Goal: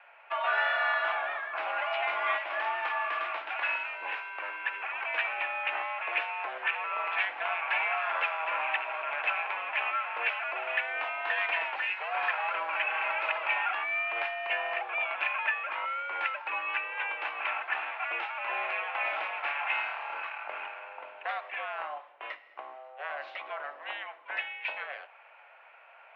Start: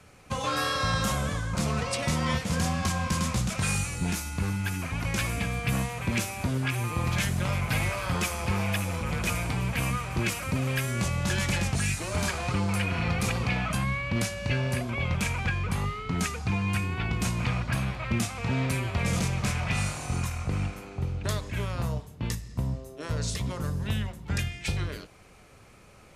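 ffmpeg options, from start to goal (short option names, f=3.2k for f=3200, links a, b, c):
-af "bandreject=f=1.1k:w=14,highpass=f=560:t=q:w=0.5412,highpass=f=560:t=q:w=1.307,lowpass=f=2.6k:t=q:w=0.5176,lowpass=f=2.6k:t=q:w=0.7071,lowpass=f=2.6k:t=q:w=1.932,afreqshift=120,volume=4dB"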